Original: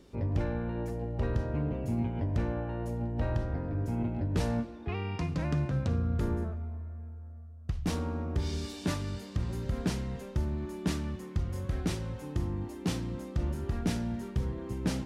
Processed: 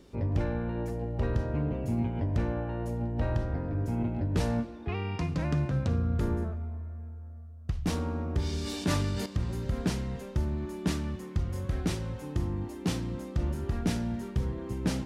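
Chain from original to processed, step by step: 8.58–9.26 sustainer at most 21 dB/s; gain +1.5 dB

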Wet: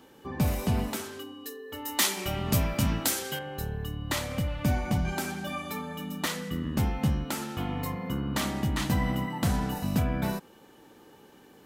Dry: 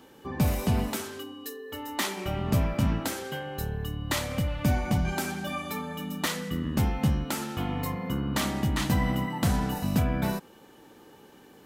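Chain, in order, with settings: 1.85–3.39 high shelf 2900 Hz +11.5 dB; gain -1.5 dB

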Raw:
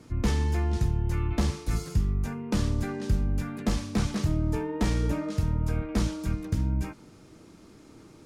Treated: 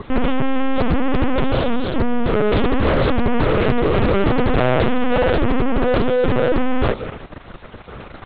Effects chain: one-sided fold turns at -21.5 dBFS; 3.56–4.32 steep low-pass 3100 Hz 72 dB/oct; envelope phaser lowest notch 350 Hz, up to 2100 Hz, full sweep at -28 dBFS; ring modulator 190 Hz; 5.61–6.31 compressor 4:1, threshold -31 dBFS, peak gain reduction 7.5 dB; elliptic high-pass 200 Hz, stop band 70 dB; 1.72–2.34 bell 510 Hz -8.5 dB 2.8 oct; fuzz box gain 52 dB, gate -58 dBFS; LPC vocoder at 8 kHz pitch kept; Doppler distortion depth 0.37 ms; gain -1 dB

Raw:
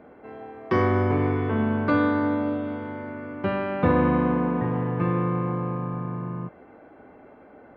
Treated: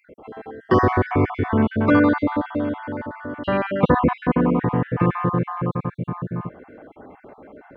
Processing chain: random spectral dropouts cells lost 40%; gain +6.5 dB

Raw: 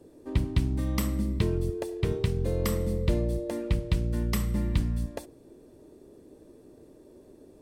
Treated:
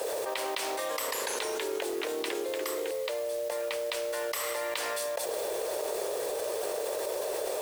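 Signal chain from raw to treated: steep high-pass 480 Hz 48 dB/oct; requantised 12-bit, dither none; modulation noise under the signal 16 dB; 0.68–2.91 echoes that change speed 0.105 s, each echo -2 st, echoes 3; fast leveller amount 100%; gain -3 dB

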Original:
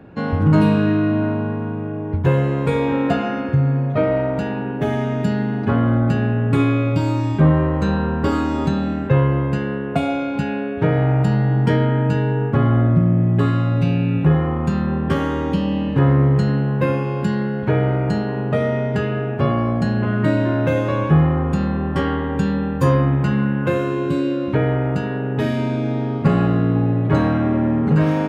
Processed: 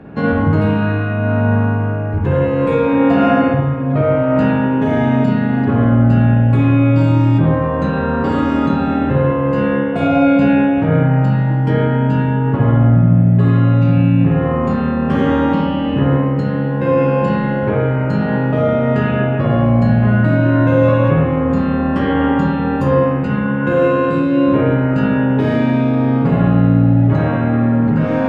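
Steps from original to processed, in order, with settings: LPF 3600 Hz 6 dB/oct; in parallel at +0.5 dB: negative-ratio compressor -22 dBFS, ratio -0.5; on the sum: reverb RT60 1.2 s, pre-delay 49 ms, DRR -3.5 dB; gain -4 dB

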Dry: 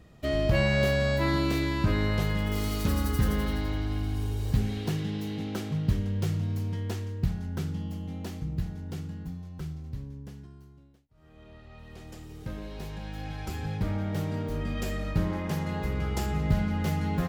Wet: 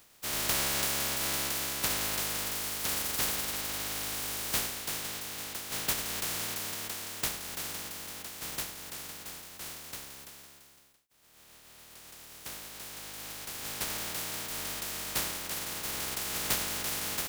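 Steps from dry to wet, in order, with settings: spectral contrast lowered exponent 0.12; gain -6 dB

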